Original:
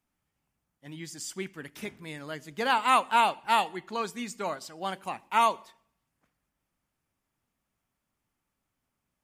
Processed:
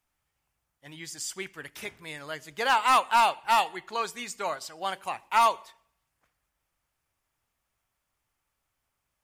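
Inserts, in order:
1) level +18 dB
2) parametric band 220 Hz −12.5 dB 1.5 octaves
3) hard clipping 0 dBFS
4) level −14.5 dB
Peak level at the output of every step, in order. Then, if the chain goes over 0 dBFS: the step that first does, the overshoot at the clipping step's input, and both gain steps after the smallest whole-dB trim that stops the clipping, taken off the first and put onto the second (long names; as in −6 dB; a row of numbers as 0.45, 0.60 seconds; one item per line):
+8.5, +7.5, 0.0, −14.5 dBFS
step 1, 7.5 dB
step 1 +10 dB, step 4 −6.5 dB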